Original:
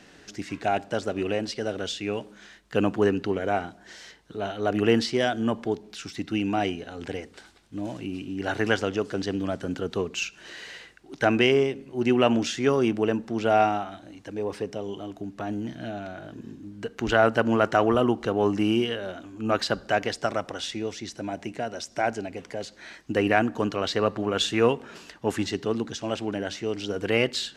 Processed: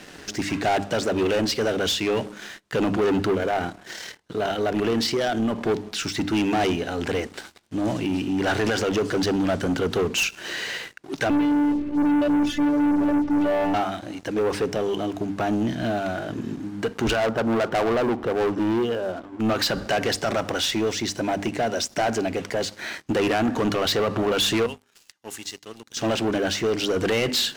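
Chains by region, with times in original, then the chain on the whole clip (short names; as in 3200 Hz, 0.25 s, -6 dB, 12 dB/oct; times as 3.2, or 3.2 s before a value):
3.35–5.64 AM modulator 38 Hz, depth 25% + compressor 2:1, threshold -29 dBFS
11.3–13.74 tilt -4 dB/oct + robotiser 293 Hz
17.2–19.4 running mean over 20 samples + hard clip -21 dBFS + low shelf 430 Hz -7 dB
24.66–25.97 pre-emphasis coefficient 0.9 + resonator 410 Hz, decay 0.74 s, mix 50%
whole clip: notches 50/100/150/200/250/300 Hz; limiter -16.5 dBFS; sample leveller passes 3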